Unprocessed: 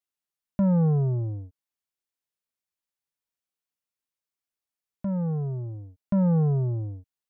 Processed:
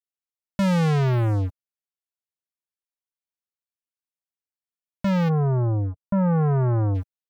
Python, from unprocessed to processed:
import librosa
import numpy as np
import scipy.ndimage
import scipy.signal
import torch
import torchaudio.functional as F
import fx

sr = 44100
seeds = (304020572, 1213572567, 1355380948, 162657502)

y = fx.leveller(x, sr, passes=5)
y = fx.lowpass(y, sr, hz=fx.line((5.28, 1200.0), (6.94, 1400.0)), slope=24, at=(5.28, 6.94), fade=0.02)